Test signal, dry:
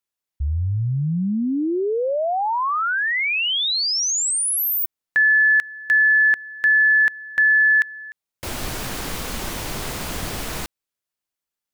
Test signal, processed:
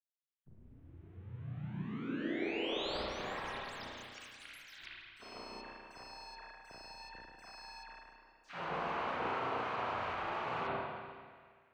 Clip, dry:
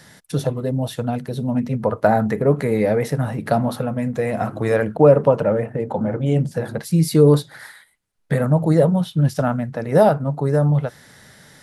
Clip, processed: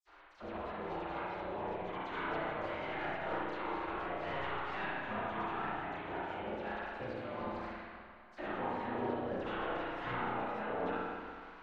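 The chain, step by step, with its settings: median filter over 25 samples; treble shelf 3.5 kHz -8 dB; phase dispersion lows, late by 74 ms, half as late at 2.5 kHz; reverse; compression 5:1, threshold -30 dBFS; reverse; distance through air 160 m; tape echo 164 ms, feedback 70%, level -13 dB, low-pass 4.3 kHz; spectral gate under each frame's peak -20 dB weak; spring tank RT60 1.7 s, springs 33/48 ms, chirp 30 ms, DRR -6 dB; trim +4.5 dB

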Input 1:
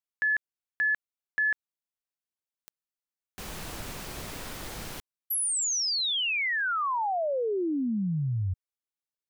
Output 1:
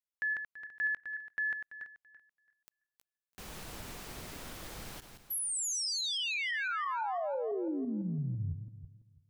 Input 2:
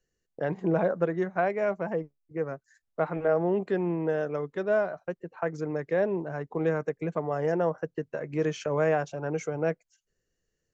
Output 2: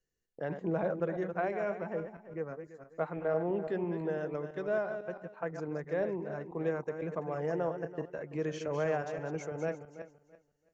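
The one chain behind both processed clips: backward echo that repeats 167 ms, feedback 45%, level -8 dB; trim -7 dB

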